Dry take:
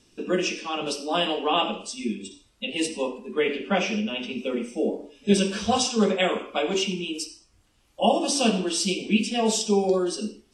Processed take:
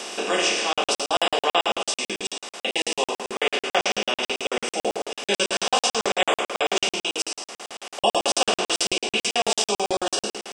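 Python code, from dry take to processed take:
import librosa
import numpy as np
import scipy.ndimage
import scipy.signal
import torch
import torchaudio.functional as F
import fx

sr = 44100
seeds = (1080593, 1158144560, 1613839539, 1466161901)

y = fx.bin_compress(x, sr, power=0.4)
y = scipy.signal.sosfilt(scipy.signal.butter(2, 570.0, 'highpass', fs=sr, output='sos'), y)
y = fx.buffer_crackle(y, sr, first_s=0.73, period_s=0.11, block=2048, kind='zero')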